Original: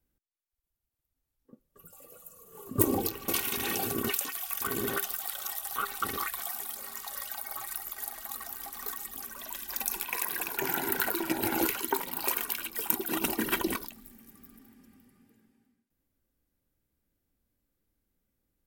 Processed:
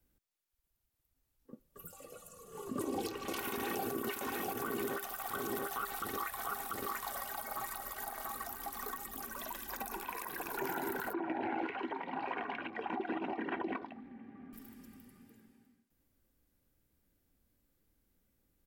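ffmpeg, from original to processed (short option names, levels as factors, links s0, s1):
-filter_complex "[0:a]asettb=1/sr,asplit=3[s0][s1][s2];[s0]atrim=end=1.924[s3];[s1]atrim=start=1.92:end=3.37,asetpts=PTS-STARTPTS,afade=t=in:d=0.004:c=qsin,afade=t=out:st=1.446:d=0.004:c=qsin,lowpass=8100[s4];[s2]atrim=start=3.366[s5];[s3][s4]acrossfade=d=0.004:c1=hsin:c2=qsin[s6];[s6][s5]acrossfade=d=0.004:c1=qsin:c2=hsin,asplit=3[s7][s8][s9];[s7]afade=t=out:st=4.09:d=0.02[s10];[s8]aecho=1:1:689:0.562,afade=t=in:st=4.09:d=0.02,afade=t=out:st=8.4:d=0.02[s11];[s9]afade=t=in:st=8.4:d=0.02[s12];[s10][s11][s12]amix=inputs=3:normalize=0,asettb=1/sr,asplit=3[s13][s14][s15];[s13]atrim=end=10.104[s16];[s14]atrim=start=10.1:end=10.55,asetpts=PTS-STARTPTS,afade=t=in:d=0.004:c=qsin,afade=t=out:st=0.446:d=0.004:c=qsin,acompressor=threshold=0.02:ratio=4:attack=3.2:release=140:knee=1:detection=peak[s17];[s15]atrim=start=10.546[s18];[s16][s17]acrossfade=d=0.004:c1=hsin:c2=qsin[s19];[s19][s18]acrossfade=d=0.004:c1=qsin:c2=hsin,asettb=1/sr,asplit=3[s20][s21][s22];[s20]atrim=end=11.134[s23];[s21]atrim=start=11.13:end=14.53,asetpts=PTS-STARTPTS,afade=t=in:d=0.004:c=qsin,afade=t=out:st=3.396:d=0.004:c=qsin,highpass=110,equalizer=f=270:t=q:w=4:g=5,equalizer=f=740:t=q:w=4:g=10,equalizer=f=1300:t=q:w=4:g=-5,lowpass=f=2200:w=0.5412,lowpass=f=2200:w=1.3066[s24];[s22]atrim=start=14.526[s25];[s23][s24]acrossfade=d=0.004:c1=hsin:c2=qsin[s26];[s26][s25]acrossfade=d=0.004:c1=qsin:c2=hsin,acrossover=split=220|1600[s27][s28][s29];[s27]acompressor=threshold=0.00141:ratio=4[s30];[s28]acompressor=threshold=0.0141:ratio=4[s31];[s29]acompressor=threshold=0.00447:ratio=4[s32];[s30][s31][s32]amix=inputs=3:normalize=0,alimiter=level_in=2.24:limit=0.0631:level=0:latency=1:release=36,volume=0.447,volume=1.5"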